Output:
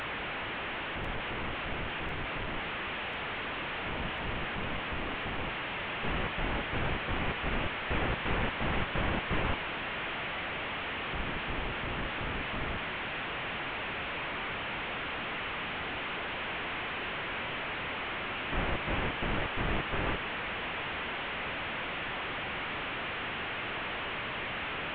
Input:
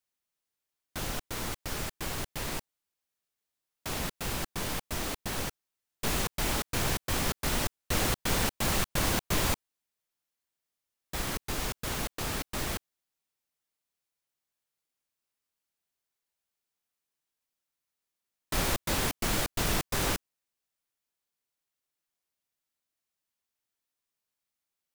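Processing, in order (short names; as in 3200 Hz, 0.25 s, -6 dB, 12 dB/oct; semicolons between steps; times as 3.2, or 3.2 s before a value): delta modulation 16 kbps, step -27.5 dBFS; thin delay 1.045 s, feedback 67%, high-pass 1800 Hz, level -8 dB; gain -2 dB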